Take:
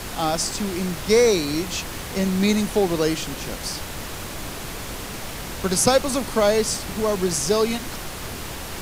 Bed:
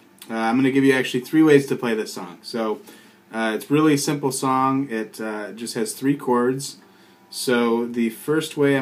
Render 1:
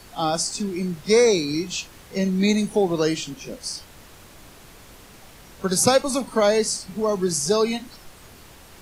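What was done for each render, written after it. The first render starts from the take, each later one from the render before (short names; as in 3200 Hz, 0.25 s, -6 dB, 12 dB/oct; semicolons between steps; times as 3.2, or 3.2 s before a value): noise print and reduce 14 dB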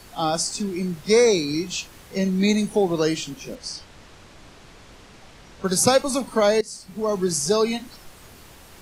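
3.55–5.65 LPF 6400 Hz; 6.61–7.16 fade in, from -18.5 dB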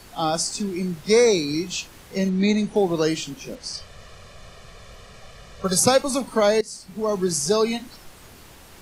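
2.29–2.76 air absorption 80 m; 3.73–5.8 comb 1.7 ms, depth 82%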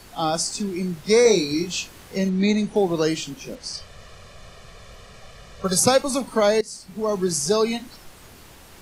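1.23–2.17 doubler 23 ms -4 dB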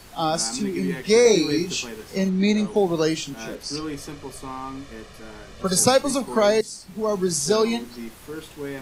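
add bed -14.5 dB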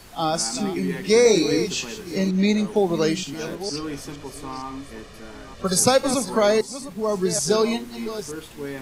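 reverse delay 0.462 s, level -11.5 dB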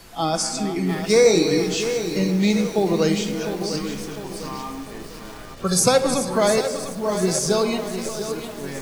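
shoebox room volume 2700 m³, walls mixed, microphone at 0.74 m; lo-fi delay 0.702 s, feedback 55%, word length 6-bit, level -9.5 dB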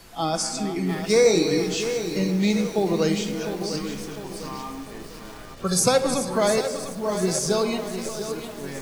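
gain -2.5 dB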